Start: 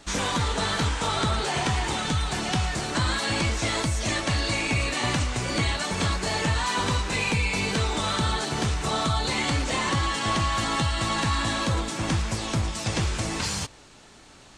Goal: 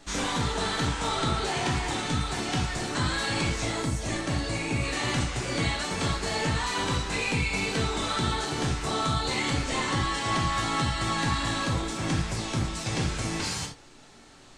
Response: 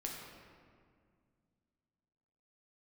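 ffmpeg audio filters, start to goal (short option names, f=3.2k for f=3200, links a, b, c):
-filter_complex "[0:a]asettb=1/sr,asplit=3[a][b][c];[a]atrim=end=3.654[d];[b]atrim=start=3.65:end=4.84,asetpts=PTS-STARTPTS,afade=t=in:d=0.004:c=qsin,afade=t=out:st=1.186:d=0.004:c=qsin,equalizer=f=3.3k:t=o:w=2.5:g=-5[e];[c]atrim=start=4.836[f];[d][e]acrossfade=d=0.004:c1=hsin:c2=qsin[g];[g][f]acrossfade=d=0.004:c1=qsin:c2=hsin[h];[1:a]atrim=start_sample=2205,atrim=end_sample=3969[i];[h][i]afir=irnorm=-1:irlink=0"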